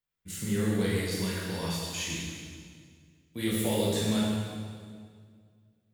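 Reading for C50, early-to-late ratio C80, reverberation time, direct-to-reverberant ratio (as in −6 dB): −1.5 dB, 0.5 dB, 2.0 s, −6.5 dB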